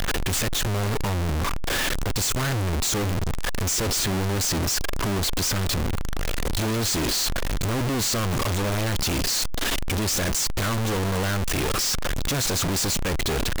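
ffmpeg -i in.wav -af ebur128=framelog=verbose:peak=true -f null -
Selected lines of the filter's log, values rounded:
Integrated loudness:
  I:         -24.4 LUFS
  Threshold: -34.4 LUFS
Loudness range:
  LRA:         0.9 LU
  Threshold: -44.4 LUFS
  LRA low:   -24.9 LUFS
  LRA high:  -23.9 LUFS
True peak:
  Peak:      -18.7 dBFS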